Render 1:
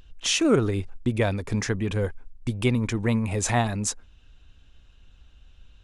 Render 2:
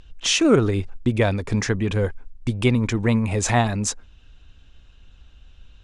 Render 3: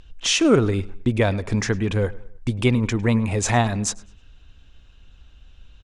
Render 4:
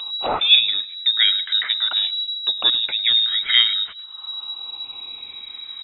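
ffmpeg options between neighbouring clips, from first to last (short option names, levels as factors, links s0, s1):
-af "lowpass=8400,volume=1.58"
-filter_complex "[0:a]asplit=2[s0][s1];[s1]adelay=104,lowpass=f=4100:p=1,volume=0.1,asplit=2[s2][s3];[s3]adelay=104,lowpass=f=4100:p=1,volume=0.43,asplit=2[s4][s5];[s5]adelay=104,lowpass=f=4100:p=1,volume=0.43[s6];[s0][s2][s4][s6]amix=inputs=4:normalize=0"
-af "afftfilt=real='re*pow(10,14/40*sin(2*PI*(0.66*log(max(b,1)*sr/1024/100)/log(2)-(0.44)*(pts-256)/sr)))':imag='im*pow(10,14/40*sin(2*PI*(0.66*log(max(b,1)*sr/1024/100)/log(2)-(0.44)*(pts-256)/sr)))':win_size=1024:overlap=0.75,acompressor=mode=upward:threshold=0.1:ratio=2.5,lowpass=f=3300:t=q:w=0.5098,lowpass=f=3300:t=q:w=0.6013,lowpass=f=3300:t=q:w=0.9,lowpass=f=3300:t=q:w=2.563,afreqshift=-3900,volume=0.891"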